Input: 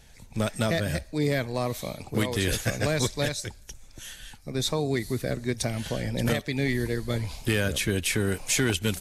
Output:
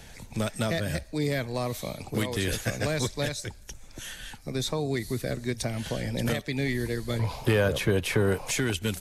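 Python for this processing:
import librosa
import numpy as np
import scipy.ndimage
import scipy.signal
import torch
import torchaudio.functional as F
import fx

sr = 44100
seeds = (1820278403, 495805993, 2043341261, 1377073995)

y = fx.graphic_eq(x, sr, hz=(125, 500, 1000, 8000), db=(8, 9, 11, -6), at=(7.19, 8.51))
y = fx.band_squash(y, sr, depth_pct=40)
y = y * 10.0 ** (-2.5 / 20.0)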